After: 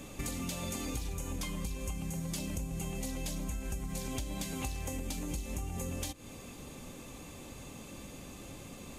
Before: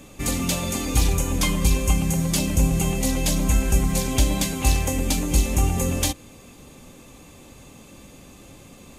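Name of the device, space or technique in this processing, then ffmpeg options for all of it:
serial compression, peaks first: -af "acompressor=threshold=-28dB:ratio=6,acompressor=threshold=-36dB:ratio=2,volume=-1.5dB"

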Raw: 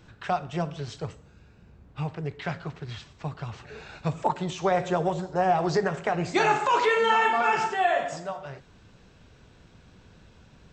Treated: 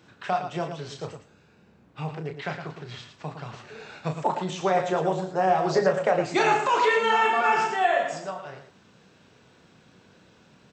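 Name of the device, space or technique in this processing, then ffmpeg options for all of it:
slapback doubling: -filter_complex "[0:a]asplit=3[link_01][link_02][link_03];[link_02]adelay=32,volume=-7dB[link_04];[link_03]adelay=112,volume=-8.5dB[link_05];[link_01][link_04][link_05]amix=inputs=3:normalize=0,highpass=170,asettb=1/sr,asplit=3[link_06][link_07][link_08];[link_06]atrim=end=5.734[link_09];[link_07]atrim=start=5.73:end=6.22,asetpts=PTS-STARTPTS,afade=type=in:duration=0.004:curve=qsin,afade=type=out:start_time=0.486:duration=0.004:curve=qsin,equalizer=frequency=550:width_type=o:width=0.26:gain=13.5[link_10];[link_08]atrim=start=6.216[link_11];[link_09][link_10]acrossfade=duration=0.004:curve1=hsin:curve2=qsin[link_12];[link_12][link_11]acrossfade=duration=0.004:curve1=qsin:curve2=hsin"

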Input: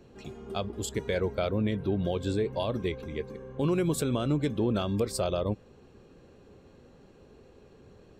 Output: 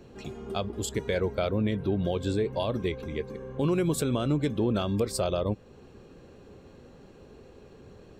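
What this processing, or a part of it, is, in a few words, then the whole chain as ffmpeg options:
parallel compression: -filter_complex "[0:a]asplit=2[link_01][link_02];[link_02]acompressor=threshold=-39dB:ratio=6,volume=-4.5dB[link_03];[link_01][link_03]amix=inputs=2:normalize=0"

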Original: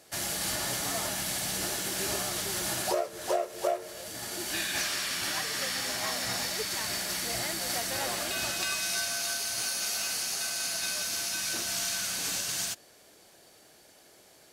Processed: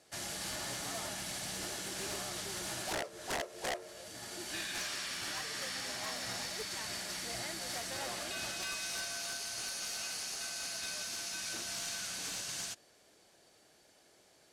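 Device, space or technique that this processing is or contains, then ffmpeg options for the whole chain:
overflowing digital effects unit: -af "aeval=exprs='(mod(13.3*val(0)+1,2)-1)/13.3':channel_layout=same,lowpass=9800,volume=-7dB"

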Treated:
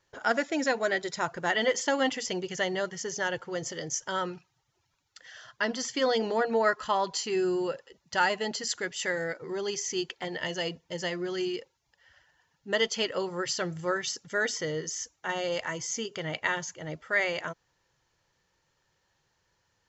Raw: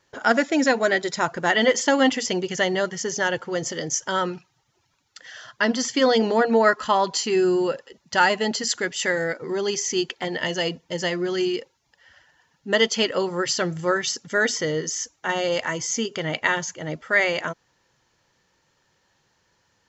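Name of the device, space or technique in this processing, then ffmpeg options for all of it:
low shelf boost with a cut just above: -af "lowshelf=frequency=70:gain=7.5,equalizer=frequency=240:width_type=o:width=0.58:gain=-5.5,volume=-7dB"

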